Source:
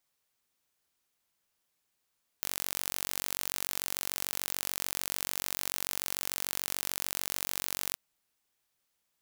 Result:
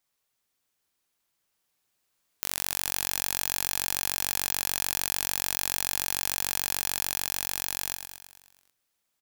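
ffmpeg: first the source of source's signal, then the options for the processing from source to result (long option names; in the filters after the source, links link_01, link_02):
-f lavfi -i "aevalsrc='0.501*eq(mod(n,942),0)':duration=5.53:sample_rate=44100"
-af "dynaudnorm=framelen=200:gausssize=21:maxgain=11.5dB,aecho=1:1:108|216|324|432|540|648|756:0.398|0.235|0.139|0.0818|0.0482|0.0285|0.0168"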